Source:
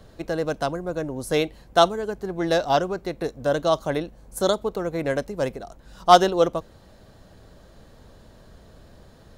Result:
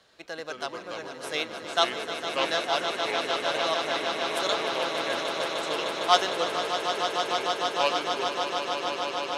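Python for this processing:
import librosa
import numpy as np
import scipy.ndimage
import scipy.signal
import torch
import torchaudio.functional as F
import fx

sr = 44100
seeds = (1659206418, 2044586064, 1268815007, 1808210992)

y = fx.bandpass_q(x, sr, hz=3200.0, q=0.66)
y = fx.echo_pitch(y, sr, ms=127, semitones=-4, count=2, db_per_echo=-6.0)
y = fx.echo_swell(y, sr, ms=152, loudest=8, wet_db=-9.0)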